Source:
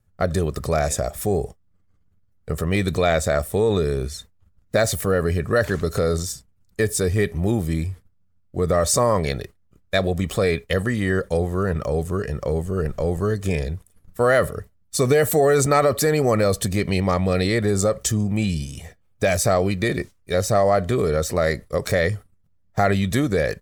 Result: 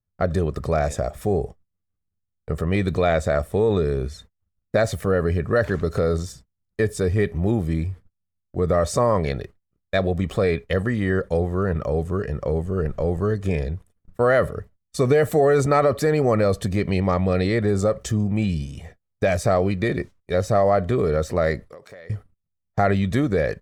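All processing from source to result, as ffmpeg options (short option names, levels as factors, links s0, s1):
-filter_complex "[0:a]asettb=1/sr,asplit=3[s0][s1][s2];[s0]atrim=end=21.704[s3];[s1]atrim=start=21.7:end=22.1,asetpts=PTS-STARTPTS,afade=t=in:d=0.004:c=qsin,afade=t=out:st=0.396:d=0.004:c=qsin,highpass=f=490:p=1,acompressor=threshold=0.0141:ratio=10:attack=3.2:release=140:knee=1:detection=peak[s4];[s2]atrim=start=22.096[s5];[s3][s4]acrossfade=d=0.004:c1=hsin:c2=qsin[s6];[s6][s5]acrossfade=d=0.004:c1=qsin:c2=hsin,lowpass=f=2100:p=1,agate=range=0.126:threshold=0.00501:ratio=16:detection=peak"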